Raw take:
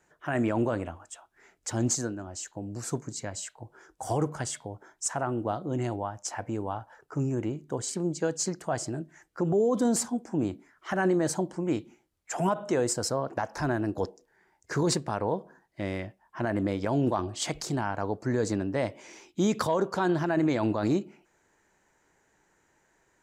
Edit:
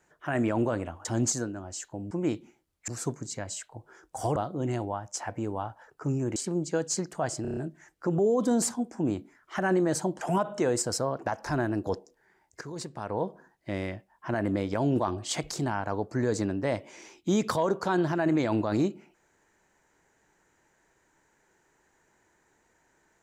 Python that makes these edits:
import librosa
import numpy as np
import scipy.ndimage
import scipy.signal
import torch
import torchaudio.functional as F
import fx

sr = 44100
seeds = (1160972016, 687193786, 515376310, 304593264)

y = fx.edit(x, sr, fx.cut(start_s=1.05, length_s=0.63),
    fx.cut(start_s=4.22, length_s=1.25),
    fx.cut(start_s=7.47, length_s=0.38),
    fx.stutter(start_s=8.91, slice_s=0.03, count=6),
    fx.move(start_s=11.55, length_s=0.77, to_s=2.74),
    fx.fade_in_from(start_s=14.72, length_s=0.64, curve='qua', floor_db=-14.5), tone=tone)